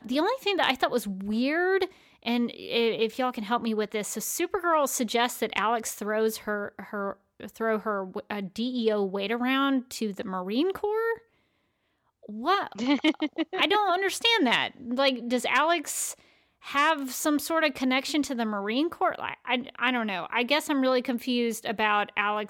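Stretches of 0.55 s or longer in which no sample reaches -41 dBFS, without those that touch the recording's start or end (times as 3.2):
11.18–12.25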